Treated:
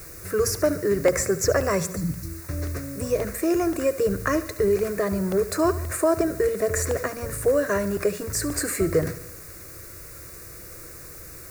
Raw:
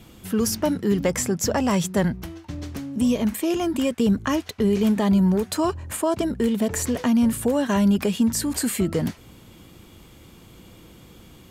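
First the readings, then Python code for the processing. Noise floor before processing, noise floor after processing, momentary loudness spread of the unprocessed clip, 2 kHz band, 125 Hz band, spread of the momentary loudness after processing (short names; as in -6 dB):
-48 dBFS, -42 dBFS, 7 LU, +2.5 dB, -3.0 dB, 17 LU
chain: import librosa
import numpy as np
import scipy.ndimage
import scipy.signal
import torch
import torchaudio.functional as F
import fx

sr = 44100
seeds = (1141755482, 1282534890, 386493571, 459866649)

p1 = fx.spec_erase(x, sr, start_s=1.96, length_s=0.45, low_hz=340.0, high_hz=4000.0)
p2 = fx.high_shelf(p1, sr, hz=8900.0, db=-9.0)
p3 = fx.hum_notches(p2, sr, base_hz=60, count=3)
p4 = fx.rider(p3, sr, range_db=4, speed_s=0.5)
p5 = p3 + (p4 * librosa.db_to_amplitude(-3.0))
p6 = fx.dmg_noise_colour(p5, sr, seeds[0], colour='white', level_db=-42.0)
p7 = fx.fixed_phaser(p6, sr, hz=860.0, stages=6)
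p8 = p7 + fx.echo_feedback(p7, sr, ms=72, feedback_pct=57, wet_db=-15.5, dry=0)
y = fx.buffer_crackle(p8, sr, first_s=0.55, period_s=0.53, block=64, kind='repeat')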